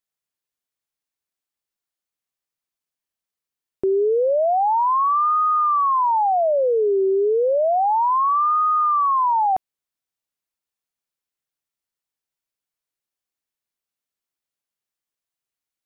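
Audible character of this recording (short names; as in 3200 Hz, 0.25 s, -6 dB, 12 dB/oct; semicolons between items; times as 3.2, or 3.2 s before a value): noise floor -89 dBFS; spectral tilt +6.5 dB/oct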